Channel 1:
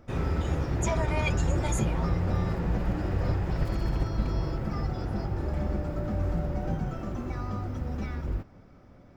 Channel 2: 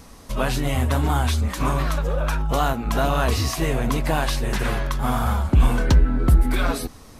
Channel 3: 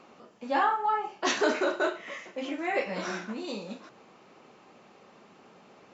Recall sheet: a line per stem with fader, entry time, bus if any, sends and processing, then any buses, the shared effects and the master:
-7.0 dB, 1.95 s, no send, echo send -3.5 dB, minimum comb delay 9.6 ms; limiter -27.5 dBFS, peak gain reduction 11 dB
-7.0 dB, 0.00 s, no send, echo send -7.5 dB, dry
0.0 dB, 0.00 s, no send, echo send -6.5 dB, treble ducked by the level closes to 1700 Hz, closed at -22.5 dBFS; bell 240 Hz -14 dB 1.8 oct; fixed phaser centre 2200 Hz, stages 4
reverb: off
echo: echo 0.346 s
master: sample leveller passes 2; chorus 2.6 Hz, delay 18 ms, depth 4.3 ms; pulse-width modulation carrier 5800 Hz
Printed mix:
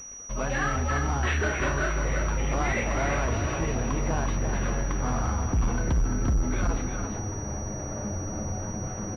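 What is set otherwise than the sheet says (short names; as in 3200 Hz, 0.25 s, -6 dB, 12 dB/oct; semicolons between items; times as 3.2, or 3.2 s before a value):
stem 2 -7.0 dB -> -13.5 dB; stem 3: missing treble ducked by the level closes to 1700 Hz, closed at -22.5 dBFS; master: missing chorus 2.6 Hz, delay 18 ms, depth 4.3 ms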